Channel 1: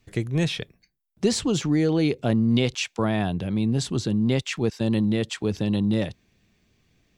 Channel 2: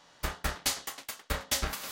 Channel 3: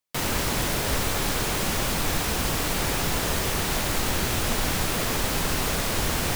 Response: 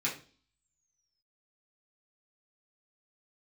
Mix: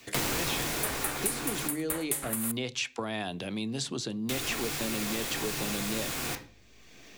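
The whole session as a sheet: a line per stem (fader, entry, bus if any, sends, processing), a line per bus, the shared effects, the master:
-4.0 dB, 0.00 s, bus A, send -22 dB, compression 1.5:1, threshold -27 dBFS, peak gain reduction 4.5 dB
0.0 dB, 0.60 s, bus A, send -23 dB, resonant high shelf 7.3 kHz +11.5 dB, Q 3
-1.5 dB, 0.00 s, muted 1.68–4.29 s, no bus, send -18 dB, auto duck -12 dB, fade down 1.25 s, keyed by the first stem
bus A: 0.0 dB, high-pass 370 Hz 12 dB/octave; compression 2.5:1, threshold -30 dBFS, peak gain reduction 11 dB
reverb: on, RT60 0.40 s, pre-delay 3 ms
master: three bands compressed up and down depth 70%

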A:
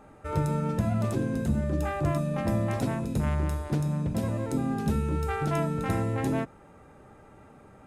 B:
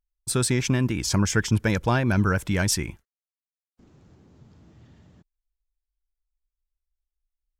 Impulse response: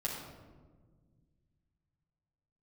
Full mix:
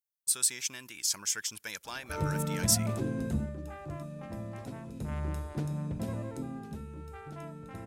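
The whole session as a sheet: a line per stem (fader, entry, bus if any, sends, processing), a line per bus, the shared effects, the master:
3.37 s -4.5 dB -> 3.58 s -13.5 dB -> 4.82 s -13.5 dB -> 5.26 s -6.5 dB -> 6.18 s -6.5 dB -> 6.83 s -16 dB, 1.85 s, no send, none
0.0 dB, 0.00 s, no send, differentiator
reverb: none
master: none

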